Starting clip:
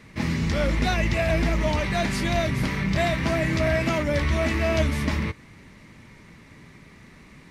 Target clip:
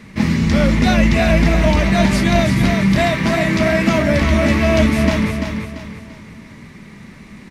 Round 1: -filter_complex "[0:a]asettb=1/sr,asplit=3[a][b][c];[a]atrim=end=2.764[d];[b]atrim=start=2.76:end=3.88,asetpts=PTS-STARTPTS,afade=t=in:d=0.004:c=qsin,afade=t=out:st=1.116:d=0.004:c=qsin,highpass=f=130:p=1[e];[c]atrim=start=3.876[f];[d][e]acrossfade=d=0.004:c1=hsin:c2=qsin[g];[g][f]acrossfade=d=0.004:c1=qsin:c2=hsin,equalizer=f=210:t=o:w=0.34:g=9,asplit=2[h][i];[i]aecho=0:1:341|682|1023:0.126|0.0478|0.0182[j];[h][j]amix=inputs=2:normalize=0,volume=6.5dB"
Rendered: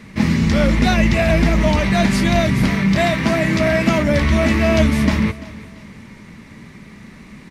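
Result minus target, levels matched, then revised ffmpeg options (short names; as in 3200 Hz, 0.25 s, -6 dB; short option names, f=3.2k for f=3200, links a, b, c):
echo-to-direct -12 dB
-filter_complex "[0:a]asettb=1/sr,asplit=3[a][b][c];[a]atrim=end=2.764[d];[b]atrim=start=2.76:end=3.88,asetpts=PTS-STARTPTS,afade=t=in:d=0.004:c=qsin,afade=t=out:st=1.116:d=0.004:c=qsin,highpass=f=130:p=1[e];[c]atrim=start=3.876[f];[d][e]acrossfade=d=0.004:c1=hsin:c2=qsin[g];[g][f]acrossfade=d=0.004:c1=qsin:c2=hsin,equalizer=f=210:t=o:w=0.34:g=9,asplit=2[h][i];[i]aecho=0:1:341|682|1023|1364|1705:0.501|0.19|0.0724|0.0275|0.0105[j];[h][j]amix=inputs=2:normalize=0,volume=6.5dB"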